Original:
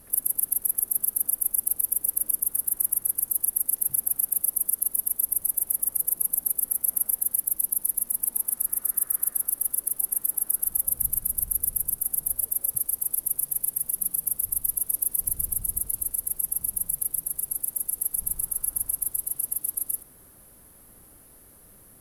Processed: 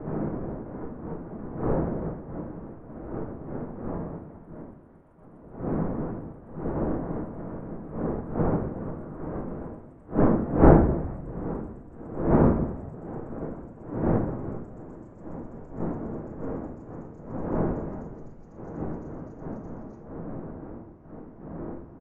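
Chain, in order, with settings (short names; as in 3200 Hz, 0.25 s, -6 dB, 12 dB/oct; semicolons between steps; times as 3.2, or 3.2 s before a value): gliding pitch shift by -10.5 st starting unshifted; wind noise 280 Hz -26 dBFS; LPF 1600 Hz 24 dB/oct; low shelf 180 Hz -10.5 dB; on a send: frequency-shifting echo 88 ms, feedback 64%, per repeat +94 Hz, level -21 dB; on the sum: shoebox room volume 210 m³, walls mixed, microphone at 0.62 m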